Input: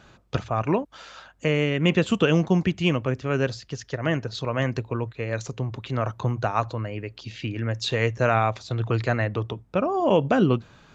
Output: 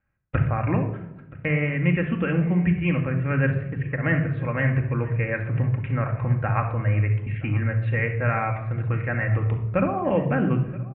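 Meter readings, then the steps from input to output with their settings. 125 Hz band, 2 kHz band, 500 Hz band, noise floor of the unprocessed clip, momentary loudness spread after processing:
+4.5 dB, +2.0 dB, −3.5 dB, −54 dBFS, 4 LU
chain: Butterworth low-pass 2,300 Hz 48 dB per octave
de-essing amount 70%
noise gate −42 dBFS, range −30 dB
flat-topped bell 510 Hz −9.5 dB 3 octaves
speech leveller within 5 dB 0.5 s
on a send: single-tap delay 975 ms −21 dB
on the sum: rectangular room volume 2,700 cubic metres, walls furnished, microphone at 2.2 metres
level +4 dB

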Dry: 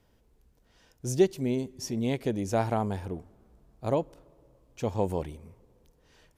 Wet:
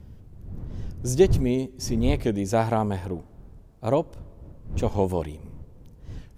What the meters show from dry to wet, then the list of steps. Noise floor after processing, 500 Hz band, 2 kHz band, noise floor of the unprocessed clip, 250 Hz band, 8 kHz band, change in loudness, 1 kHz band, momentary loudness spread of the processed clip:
−50 dBFS, +4.5 dB, +4.5 dB, −66 dBFS, +4.5 dB, +4.5 dB, +5.0 dB, +4.5 dB, 21 LU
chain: wind on the microphone 100 Hz −37 dBFS
wow of a warped record 45 rpm, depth 100 cents
level +4.5 dB

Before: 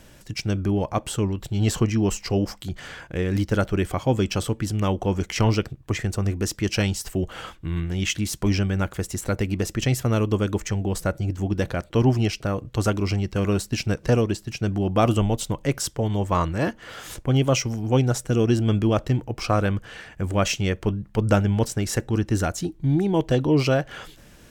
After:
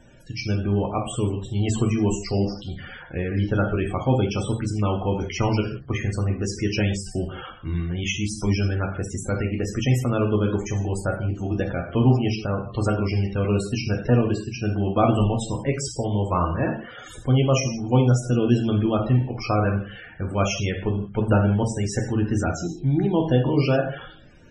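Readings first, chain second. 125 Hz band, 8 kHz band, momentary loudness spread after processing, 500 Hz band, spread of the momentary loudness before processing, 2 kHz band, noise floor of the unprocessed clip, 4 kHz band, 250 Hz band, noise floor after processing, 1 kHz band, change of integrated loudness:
+1.0 dB, −3.5 dB, 8 LU, 0.0 dB, 7 LU, −0.5 dB, −50 dBFS, −2.5 dB, +0.5 dB, −42 dBFS, +0.5 dB, +0.5 dB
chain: reverb whose tail is shaped and stops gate 210 ms falling, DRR 1 dB
spectral peaks only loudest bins 64
level −2 dB

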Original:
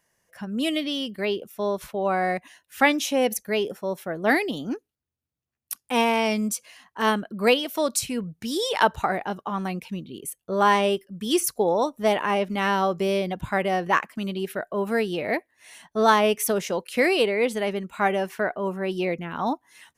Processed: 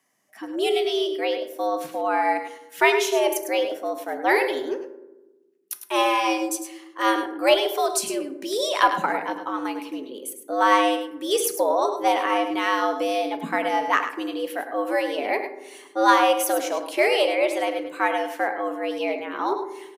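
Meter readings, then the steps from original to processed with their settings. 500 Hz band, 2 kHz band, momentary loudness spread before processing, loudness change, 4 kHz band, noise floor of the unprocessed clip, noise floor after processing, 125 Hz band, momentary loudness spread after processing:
+1.5 dB, +1.0 dB, 10 LU, +1.5 dB, +1.5 dB, −83 dBFS, −52 dBFS, −17.5 dB, 10 LU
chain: feedback delay network reverb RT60 0.95 s, low-frequency decay 1.6×, high-frequency decay 0.45×, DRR 8.5 dB
frequency shifter +110 Hz
harmonic generator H 2 −30 dB, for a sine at −4 dBFS
on a send: single-tap delay 103 ms −9.5 dB

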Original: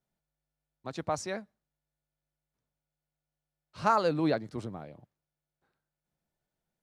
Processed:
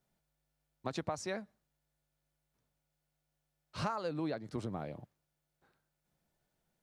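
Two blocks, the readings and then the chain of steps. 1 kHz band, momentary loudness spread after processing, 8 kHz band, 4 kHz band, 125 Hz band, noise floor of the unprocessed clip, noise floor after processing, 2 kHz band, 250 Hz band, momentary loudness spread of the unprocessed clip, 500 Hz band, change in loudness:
−10.0 dB, 11 LU, −4.5 dB, −4.0 dB, −3.5 dB, below −85 dBFS, −85 dBFS, −6.5 dB, −6.0 dB, 19 LU, −7.5 dB, −9.0 dB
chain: downward compressor 12 to 1, threshold −38 dBFS, peak gain reduction 18.5 dB
level +5 dB

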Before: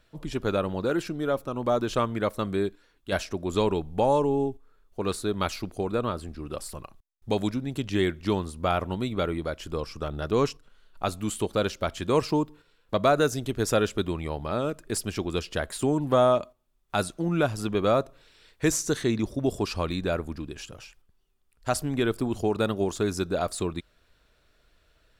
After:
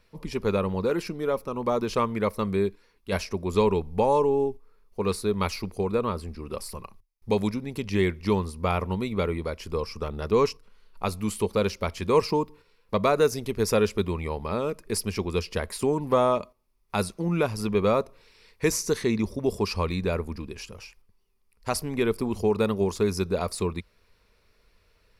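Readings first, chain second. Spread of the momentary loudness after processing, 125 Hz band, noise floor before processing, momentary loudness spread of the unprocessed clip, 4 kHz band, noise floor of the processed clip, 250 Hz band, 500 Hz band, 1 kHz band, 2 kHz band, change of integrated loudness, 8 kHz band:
11 LU, +0.5 dB, −66 dBFS, 11 LU, −1.0 dB, −66 dBFS, 0.0 dB, +1.5 dB, +0.5 dB, −0.5 dB, +1.0 dB, −0.5 dB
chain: EQ curve with evenly spaced ripples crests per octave 0.86, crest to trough 8 dB

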